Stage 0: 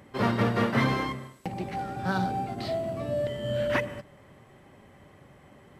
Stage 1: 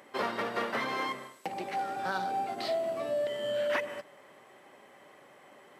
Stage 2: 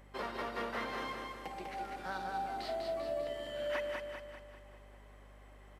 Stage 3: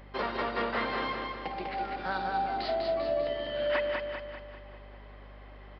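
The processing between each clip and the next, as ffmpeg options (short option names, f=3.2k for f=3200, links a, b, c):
-af "acompressor=threshold=-27dB:ratio=6,highpass=430,volume=2dB"
-filter_complex "[0:a]aeval=exprs='val(0)+0.00355*(sin(2*PI*50*n/s)+sin(2*PI*2*50*n/s)/2+sin(2*PI*3*50*n/s)/3+sin(2*PI*4*50*n/s)/4+sin(2*PI*5*50*n/s)/5)':c=same,asplit=2[a][b];[b]aecho=0:1:197|394|591|788|985|1182|1379:0.631|0.322|0.164|0.0837|0.0427|0.0218|0.0111[c];[a][c]amix=inputs=2:normalize=0,volume=-8dB"
-af "aresample=11025,aresample=44100,volume=7.5dB"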